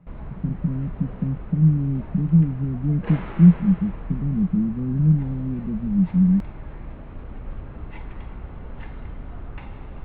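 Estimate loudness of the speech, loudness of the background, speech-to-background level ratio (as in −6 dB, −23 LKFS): −21.5 LKFS, −38.5 LKFS, 17.0 dB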